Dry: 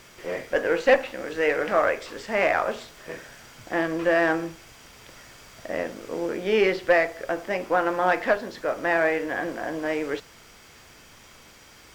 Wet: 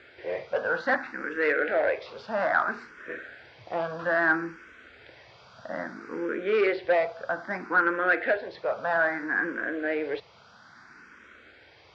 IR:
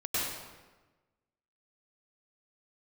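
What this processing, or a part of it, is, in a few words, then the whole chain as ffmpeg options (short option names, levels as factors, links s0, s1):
barber-pole phaser into a guitar amplifier: -filter_complex "[0:a]asplit=2[s0][s1];[s1]afreqshift=0.61[s2];[s0][s2]amix=inputs=2:normalize=1,asoftclip=type=tanh:threshold=0.141,highpass=91,equalizer=f=150:t=q:w=4:g=-4,equalizer=f=1500:t=q:w=4:g=10,equalizer=f=3000:t=q:w=4:g=-6,lowpass=f=4300:w=0.5412,lowpass=f=4300:w=1.3066"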